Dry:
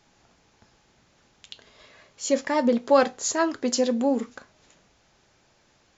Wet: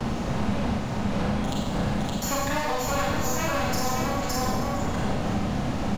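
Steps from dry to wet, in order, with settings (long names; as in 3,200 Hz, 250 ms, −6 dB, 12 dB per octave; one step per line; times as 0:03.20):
lower of the sound and its delayed copy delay 6.5 ms
wind on the microphone 280 Hz −26 dBFS
low-shelf EQ 180 Hz −3.5 dB
noise gate with hold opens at −31 dBFS
drawn EQ curve 240 Hz 0 dB, 360 Hz −9 dB, 710 Hz +3 dB
single-tap delay 566 ms −5 dB
downward compressor, threshold −29 dBFS, peak gain reduction 13.5 dB
four-comb reverb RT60 1 s, combs from 30 ms, DRR −5 dB
multiband upward and downward compressor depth 70%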